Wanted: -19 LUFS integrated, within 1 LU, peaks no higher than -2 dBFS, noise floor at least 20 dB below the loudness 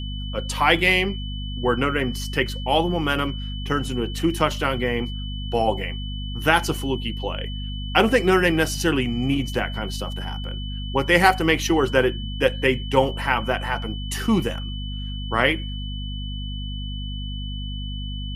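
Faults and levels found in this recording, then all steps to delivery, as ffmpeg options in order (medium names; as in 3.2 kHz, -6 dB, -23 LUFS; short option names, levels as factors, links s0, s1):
hum 50 Hz; highest harmonic 250 Hz; hum level -28 dBFS; steady tone 3 kHz; tone level -36 dBFS; loudness -23.0 LUFS; peak level -1.5 dBFS; loudness target -19.0 LUFS
-> -af "bandreject=f=50:t=h:w=6,bandreject=f=100:t=h:w=6,bandreject=f=150:t=h:w=6,bandreject=f=200:t=h:w=6,bandreject=f=250:t=h:w=6"
-af "bandreject=f=3000:w=30"
-af "volume=1.58,alimiter=limit=0.794:level=0:latency=1"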